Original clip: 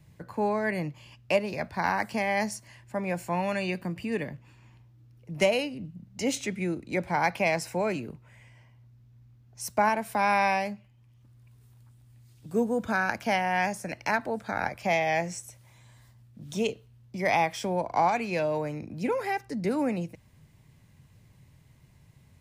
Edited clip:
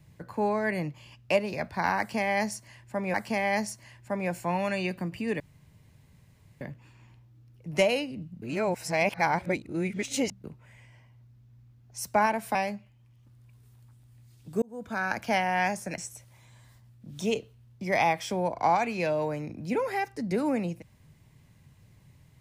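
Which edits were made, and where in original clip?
0:01.98–0:03.14: repeat, 2 plays
0:04.24: splice in room tone 1.21 s
0:06.05–0:08.07: reverse
0:10.18–0:10.53: remove
0:12.60–0:13.18: fade in
0:13.96–0:15.31: remove

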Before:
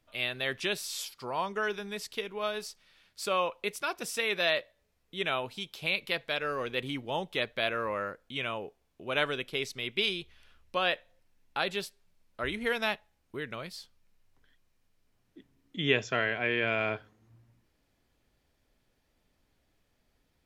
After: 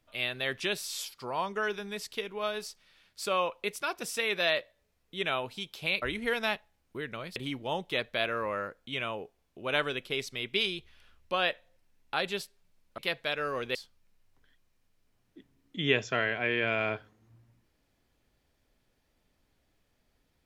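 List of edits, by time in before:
0:06.02–0:06.79: swap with 0:12.41–0:13.75

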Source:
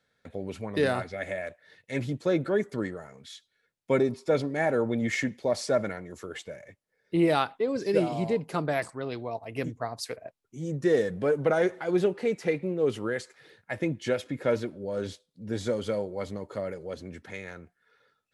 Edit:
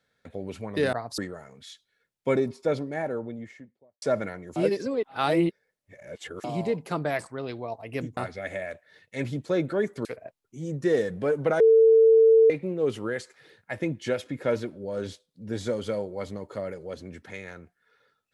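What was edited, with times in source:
0:00.93–0:02.81: swap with 0:09.80–0:10.05
0:03.99–0:05.65: fade out and dull
0:06.19–0:08.07: reverse
0:11.60–0:12.50: beep over 448 Hz −13 dBFS

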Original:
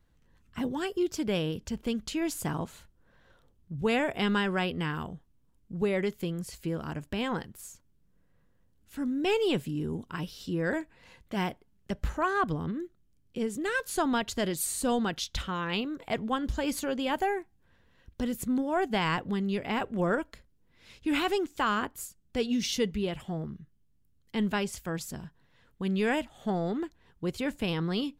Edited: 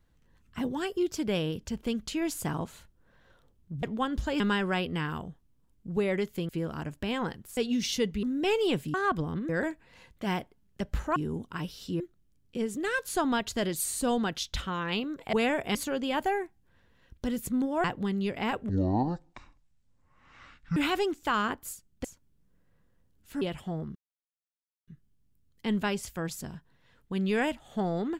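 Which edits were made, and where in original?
0:03.83–0:04.25: swap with 0:16.14–0:16.71
0:06.34–0:06.59: remove
0:07.67–0:09.04: swap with 0:22.37–0:23.03
0:09.75–0:10.59: swap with 0:12.26–0:12.81
0:18.80–0:19.12: remove
0:19.97–0:21.09: play speed 54%
0:23.57: splice in silence 0.92 s

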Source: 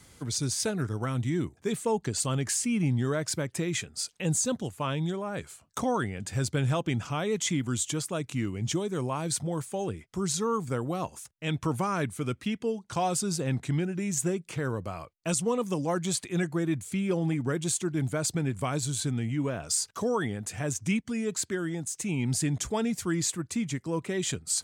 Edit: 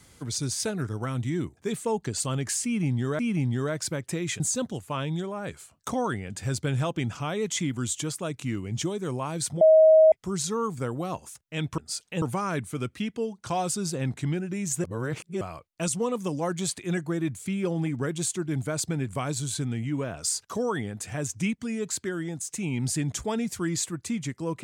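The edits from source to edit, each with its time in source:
0:02.65–0:03.19: repeat, 2 plays
0:03.86–0:04.30: move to 0:11.68
0:09.51–0:10.02: beep over 633 Hz −12 dBFS
0:14.30–0:14.87: reverse

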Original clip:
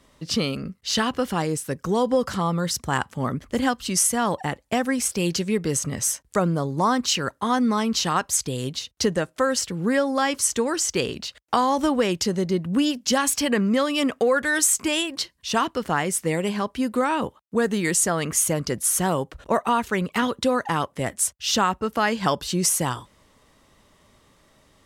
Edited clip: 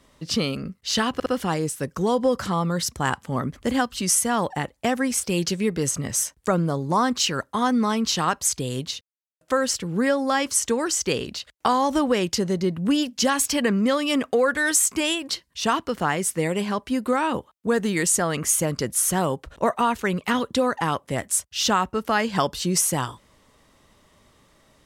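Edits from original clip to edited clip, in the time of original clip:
0:01.14: stutter 0.06 s, 3 plays
0:08.89–0:09.29: silence

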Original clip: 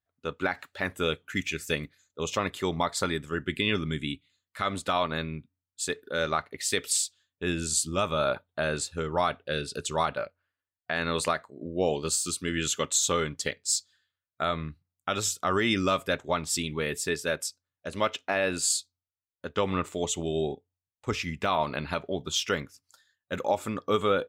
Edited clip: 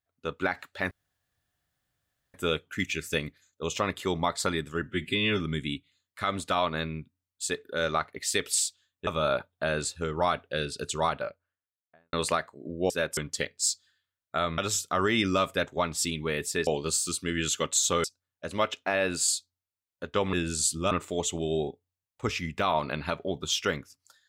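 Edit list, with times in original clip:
0:00.91: splice in room tone 1.43 s
0:03.40–0:03.78: time-stretch 1.5×
0:07.45–0:08.03: move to 0:19.75
0:09.94–0:11.09: fade out and dull
0:11.86–0:13.23: swap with 0:17.19–0:17.46
0:14.64–0:15.10: remove

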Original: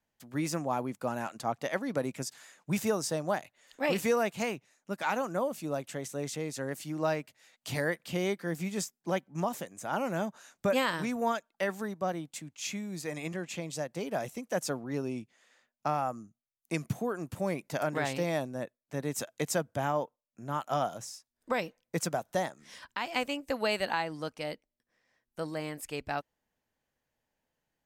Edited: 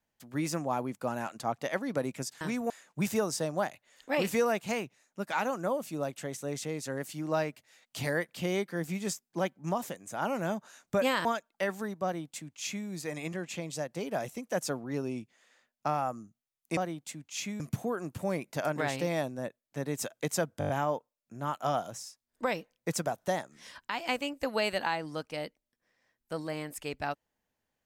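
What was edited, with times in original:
0:10.96–0:11.25: move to 0:02.41
0:12.04–0:12.87: duplicate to 0:16.77
0:19.76: stutter 0.02 s, 6 plays

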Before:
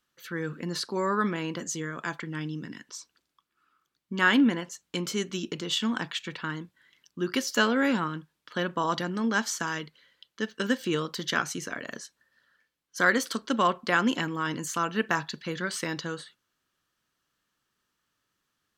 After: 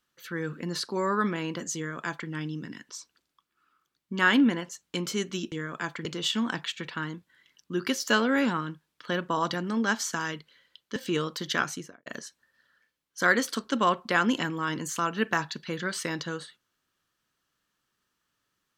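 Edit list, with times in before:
0:01.76–0:02.29: duplicate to 0:05.52
0:10.43–0:10.74: remove
0:11.44–0:11.84: fade out and dull

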